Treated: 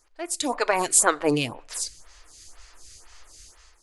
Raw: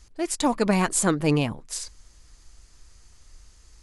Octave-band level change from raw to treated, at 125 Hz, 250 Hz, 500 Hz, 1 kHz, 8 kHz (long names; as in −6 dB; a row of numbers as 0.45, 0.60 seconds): −9.5, −6.0, +0.5, +2.0, +5.5 decibels